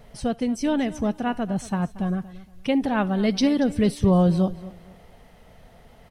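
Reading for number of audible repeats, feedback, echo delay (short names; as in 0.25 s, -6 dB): 2, 28%, 0.232 s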